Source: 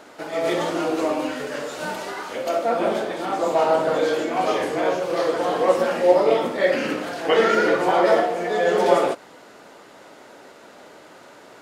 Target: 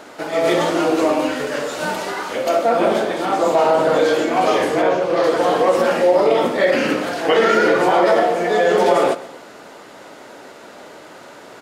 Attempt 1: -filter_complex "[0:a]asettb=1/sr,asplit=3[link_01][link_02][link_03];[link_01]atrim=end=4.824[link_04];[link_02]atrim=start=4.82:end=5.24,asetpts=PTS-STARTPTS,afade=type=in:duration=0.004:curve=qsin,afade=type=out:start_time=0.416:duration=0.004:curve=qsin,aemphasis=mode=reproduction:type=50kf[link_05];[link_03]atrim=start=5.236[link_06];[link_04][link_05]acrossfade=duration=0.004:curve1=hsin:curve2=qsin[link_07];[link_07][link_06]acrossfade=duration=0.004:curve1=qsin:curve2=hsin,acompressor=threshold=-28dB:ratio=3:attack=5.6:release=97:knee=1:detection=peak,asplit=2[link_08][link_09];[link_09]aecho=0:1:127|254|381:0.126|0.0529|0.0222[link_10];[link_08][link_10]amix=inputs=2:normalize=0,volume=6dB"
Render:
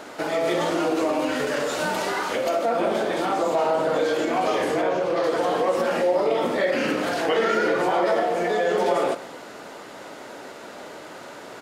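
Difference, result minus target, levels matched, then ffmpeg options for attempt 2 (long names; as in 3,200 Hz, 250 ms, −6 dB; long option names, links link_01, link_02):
downward compressor: peak gain reduction +7 dB
-filter_complex "[0:a]asettb=1/sr,asplit=3[link_01][link_02][link_03];[link_01]atrim=end=4.824[link_04];[link_02]atrim=start=4.82:end=5.24,asetpts=PTS-STARTPTS,afade=type=in:duration=0.004:curve=qsin,afade=type=out:start_time=0.416:duration=0.004:curve=qsin,aemphasis=mode=reproduction:type=50kf[link_05];[link_03]atrim=start=5.236[link_06];[link_04][link_05]acrossfade=duration=0.004:curve1=hsin:curve2=qsin[link_07];[link_07][link_06]acrossfade=duration=0.004:curve1=qsin:curve2=hsin,acompressor=threshold=-17.5dB:ratio=3:attack=5.6:release=97:knee=1:detection=peak,asplit=2[link_08][link_09];[link_09]aecho=0:1:127|254|381:0.126|0.0529|0.0222[link_10];[link_08][link_10]amix=inputs=2:normalize=0,volume=6dB"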